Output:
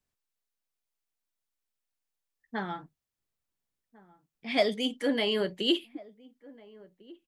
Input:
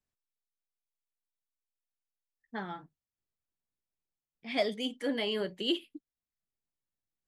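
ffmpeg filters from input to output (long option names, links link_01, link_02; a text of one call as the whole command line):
ffmpeg -i in.wav -filter_complex "[0:a]asplit=2[link_01][link_02];[link_02]adelay=1399,volume=-22dB,highshelf=frequency=4000:gain=-31.5[link_03];[link_01][link_03]amix=inputs=2:normalize=0,volume=4.5dB" out.wav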